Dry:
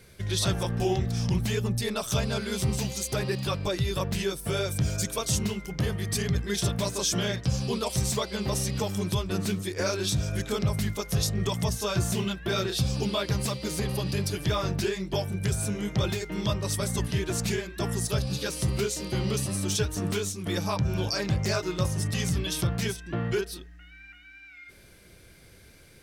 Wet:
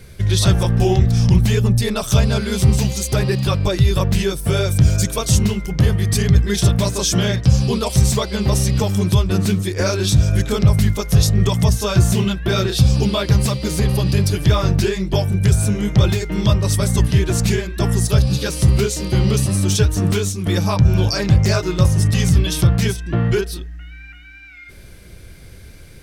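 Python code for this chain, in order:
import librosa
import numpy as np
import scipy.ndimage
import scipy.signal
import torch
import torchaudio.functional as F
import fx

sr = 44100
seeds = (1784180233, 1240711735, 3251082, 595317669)

y = fx.low_shelf(x, sr, hz=130.0, db=11.5)
y = F.gain(torch.from_numpy(y), 7.5).numpy()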